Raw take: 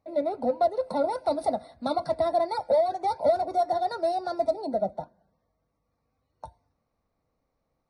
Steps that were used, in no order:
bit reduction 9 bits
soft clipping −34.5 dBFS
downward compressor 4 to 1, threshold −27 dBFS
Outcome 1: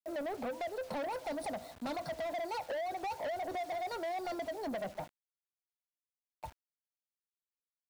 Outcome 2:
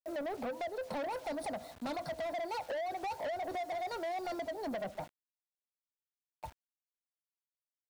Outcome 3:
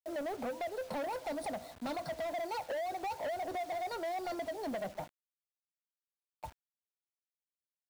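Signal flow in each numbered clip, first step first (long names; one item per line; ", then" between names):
downward compressor, then bit reduction, then soft clipping
bit reduction, then downward compressor, then soft clipping
downward compressor, then soft clipping, then bit reduction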